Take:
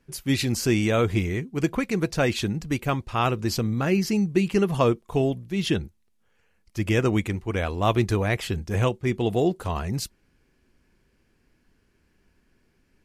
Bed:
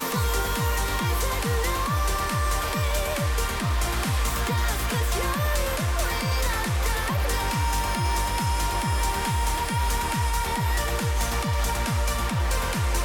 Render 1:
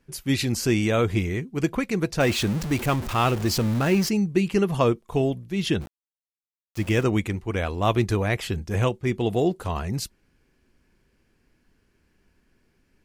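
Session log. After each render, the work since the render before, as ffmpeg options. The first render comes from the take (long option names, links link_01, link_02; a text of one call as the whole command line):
ffmpeg -i in.wav -filter_complex "[0:a]asettb=1/sr,asplit=3[link_01][link_02][link_03];[link_01]atrim=end=2.204[link_04];[link_02]atrim=start=2.2:end=4.09,asetpts=PTS-STARTPTS,afade=type=in:duration=0.004:curve=qsin,afade=type=out:start_time=1.886:duration=0.004:curve=qsin,aeval=exprs='val(0)+0.5*0.0398*sgn(val(0))':channel_layout=same[link_05];[link_03]atrim=start=4.086[link_06];[link_04][link_05]acrossfade=duration=0.004:curve1=hsin:curve2=qsin[link_07];[link_07][link_06]acrossfade=duration=0.004:curve1=qsin:curve2=hsin,asplit=3[link_08][link_09][link_10];[link_08]afade=type=out:start_time=5.8:duration=0.02[link_11];[link_09]aeval=exprs='val(0)*gte(abs(val(0)),0.0141)':channel_layout=same,afade=type=in:start_time=5.8:duration=0.02,afade=type=out:start_time=7.03:duration=0.02[link_12];[link_10]afade=type=in:start_time=7.03:duration=0.02[link_13];[link_11][link_12][link_13]amix=inputs=3:normalize=0" out.wav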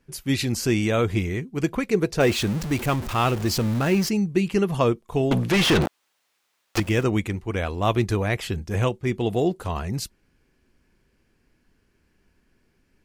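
ffmpeg -i in.wav -filter_complex "[0:a]asettb=1/sr,asplit=3[link_01][link_02][link_03];[link_01]atrim=end=1.874[link_04];[link_02]atrim=start=1.87:end=2.33,asetpts=PTS-STARTPTS,afade=type=in:duration=0.004:curve=qsin,afade=type=out:start_time=0.456:duration=0.004:curve=qsin,equalizer=frequency=420:width_type=o:width=0.36:gain=9[link_05];[link_03]atrim=start=2.326[link_06];[link_04][link_05]acrossfade=duration=0.004:curve1=hsin:curve2=qsin[link_07];[link_07][link_06]acrossfade=duration=0.004:curve1=qsin:curve2=hsin,asettb=1/sr,asplit=3[link_08][link_09][link_10];[link_08]atrim=end=5.314[link_11];[link_09]atrim=start=5.31:end=6.8,asetpts=PTS-STARTPTS,afade=type=in:duration=0.004:curve=qsin,afade=type=out:start_time=1.486:duration=0.004:curve=qsin,asplit=2[link_12][link_13];[link_13]highpass=frequency=720:poles=1,volume=38dB,asoftclip=type=tanh:threshold=-11dB[link_14];[link_12][link_14]amix=inputs=2:normalize=0,lowpass=frequency=2800:poles=1,volume=-6dB[link_15];[link_10]atrim=start=6.796[link_16];[link_11][link_15]acrossfade=duration=0.004:curve1=hsin:curve2=qsin[link_17];[link_17][link_16]acrossfade=duration=0.004:curve1=qsin:curve2=hsin" out.wav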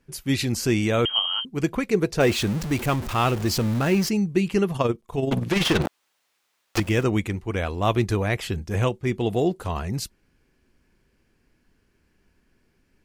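ffmpeg -i in.wav -filter_complex "[0:a]asettb=1/sr,asplit=3[link_01][link_02][link_03];[link_01]atrim=end=1.054[link_04];[link_02]atrim=start=1.05:end=1.45,asetpts=PTS-STARTPTS,afade=type=in:duration=0.004:curve=qsin,afade=type=out:start_time=0.396:duration=0.004:curve=qsin,lowpass=frequency=2800:width_type=q:width=0.5098,lowpass=frequency=2800:width_type=q:width=0.6013,lowpass=frequency=2800:width_type=q:width=0.9,lowpass=frequency=2800:width_type=q:width=2.563,afreqshift=-3300[link_05];[link_03]atrim=start=1.446[link_06];[link_04][link_05]acrossfade=duration=0.004:curve1=hsin:curve2=qsin[link_07];[link_07][link_06]acrossfade=duration=0.004:curve1=qsin:curve2=hsin,asplit=3[link_08][link_09][link_10];[link_08]afade=type=out:start_time=4.69:duration=0.02[link_11];[link_09]tremolo=f=21:d=0.571,afade=type=in:start_time=4.69:duration=0.02,afade=type=out:start_time=5.84:duration=0.02[link_12];[link_10]afade=type=in:start_time=5.84:duration=0.02[link_13];[link_11][link_12][link_13]amix=inputs=3:normalize=0" out.wav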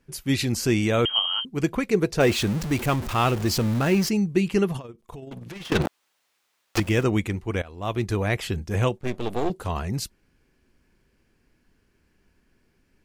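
ffmpeg -i in.wav -filter_complex "[0:a]asettb=1/sr,asplit=3[link_01][link_02][link_03];[link_01]atrim=end=4.794[link_04];[link_02]atrim=start=4.79:end=5.72,asetpts=PTS-STARTPTS,afade=type=in:duration=0.004:curve=qsin,afade=type=out:start_time=0.926:duration=0.004:curve=qsin,acompressor=threshold=-35dB:ratio=20:attack=3.2:release=140:knee=1:detection=peak[link_05];[link_03]atrim=start=5.716[link_06];[link_04][link_05]acrossfade=duration=0.004:curve1=hsin:curve2=qsin[link_07];[link_07][link_06]acrossfade=duration=0.004:curve1=qsin:curve2=hsin,asettb=1/sr,asplit=3[link_08][link_09][link_10];[link_08]atrim=end=8.974[link_11];[link_09]atrim=start=8.97:end=9.5,asetpts=PTS-STARTPTS,afade=type=in:duration=0.004:curve=qsin,afade=type=out:start_time=0.526:duration=0.004:curve=qsin,aeval=exprs='max(val(0),0)':channel_layout=same[link_12];[link_10]atrim=start=9.496[link_13];[link_11][link_12]acrossfade=duration=0.004:curve1=hsin:curve2=qsin[link_14];[link_14][link_13]acrossfade=duration=0.004:curve1=qsin:curve2=hsin,asplit=2[link_15][link_16];[link_15]atrim=end=7.62,asetpts=PTS-STARTPTS,afade=type=out:start_time=7.616:duration=0.004:curve=hsin:silence=0.105925[link_17];[link_16]atrim=start=7.62,asetpts=PTS-STARTPTS,afade=type=in:duration=0.66:silence=0.105925[link_18];[link_17][link_18]concat=n=2:v=0:a=1" out.wav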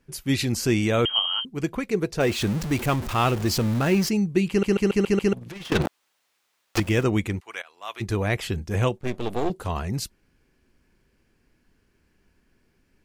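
ffmpeg -i in.wav -filter_complex "[0:a]asplit=3[link_01][link_02][link_03];[link_01]afade=type=out:start_time=7.39:duration=0.02[link_04];[link_02]highpass=1100,afade=type=in:start_time=7.39:duration=0.02,afade=type=out:start_time=8:duration=0.02[link_05];[link_03]afade=type=in:start_time=8:duration=0.02[link_06];[link_04][link_05][link_06]amix=inputs=3:normalize=0,asplit=9[link_07][link_08][link_09][link_10][link_11][link_12][link_13][link_14][link_15];[link_07]atrim=end=1.532[link_16];[link_08]atrim=start=1.528:end=2.412,asetpts=PTS-STARTPTS,volume=-3dB[link_17];[link_09]atrim=start=2.408:end=4.632[link_18];[link_10]atrim=start=4.488:end=4.632[link_19];[link_11]atrim=start=4.488:end=4.632[link_20];[link_12]atrim=start=4.488:end=4.632[link_21];[link_13]atrim=start=4.488:end=4.632[link_22];[link_14]atrim=start=4.488:end=4.632[link_23];[link_15]atrim=start=5.328[link_24];[link_16][link_17]acrossfade=duration=0.004:curve1=hsin:curve2=hsin[link_25];[link_25][link_18]acrossfade=duration=0.004:curve1=hsin:curve2=hsin[link_26];[link_26][link_19]acrossfade=duration=0.004:curve1=hsin:curve2=hsin[link_27];[link_27][link_20]acrossfade=duration=0.004:curve1=hsin:curve2=hsin[link_28];[link_28][link_21]acrossfade=duration=0.004:curve1=hsin:curve2=hsin[link_29];[link_29][link_22]acrossfade=duration=0.004:curve1=hsin:curve2=hsin[link_30];[link_30][link_23]acrossfade=duration=0.004:curve1=hsin:curve2=hsin[link_31];[link_31][link_24]acrossfade=duration=0.004:curve1=hsin:curve2=hsin" out.wav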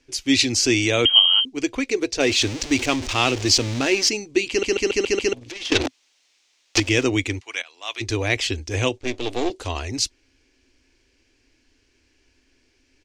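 ffmpeg -i in.wav -af "firequalizer=gain_entry='entry(110,0);entry(170,-29);entry(260,6);entry(380,2);entry(1300,-2);entry(2300,9);entry(6100,13);entry(12000,-10)':delay=0.05:min_phase=1" out.wav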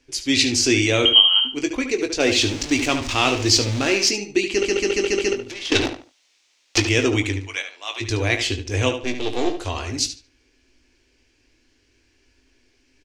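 ffmpeg -i in.wav -filter_complex "[0:a]asplit=2[link_01][link_02];[link_02]adelay=20,volume=-8.5dB[link_03];[link_01][link_03]amix=inputs=2:normalize=0,asplit=2[link_04][link_05];[link_05]adelay=73,lowpass=frequency=4300:poles=1,volume=-8dB,asplit=2[link_06][link_07];[link_07]adelay=73,lowpass=frequency=4300:poles=1,volume=0.27,asplit=2[link_08][link_09];[link_09]adelay=73,lowpass=frequency=4300:poles=1,volume=0.27[link_10];[link_04][link_06][link_08][link_10]amix=inputs=4:normalize=0" out.wav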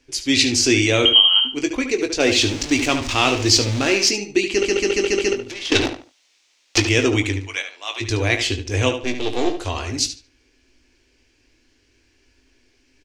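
ffmpeg -i in.wav -af "volume=1.5dB,alimiter=limit=-2dB:level=0:latency=1" out.wav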